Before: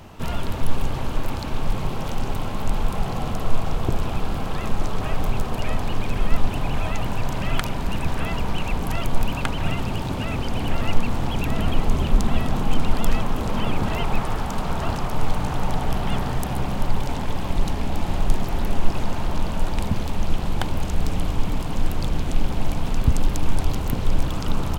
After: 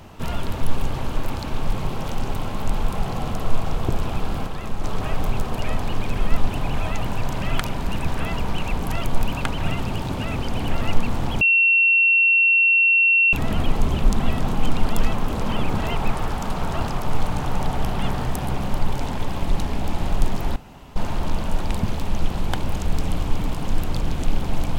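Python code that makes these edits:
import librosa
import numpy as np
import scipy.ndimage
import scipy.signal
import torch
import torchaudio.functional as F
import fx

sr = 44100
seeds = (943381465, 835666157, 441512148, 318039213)

y = fx.edit(x, sr, fx.clip_gain(start_s=4.47, length_s=0.37, db=-4.0),
    fx.insert_tone(at_s=11.41, length_s=1.92, hz=2720.0, db=-13.0),
    fx.room_tone_fill(start_s=18.64, length_s=0.4), tone=tone)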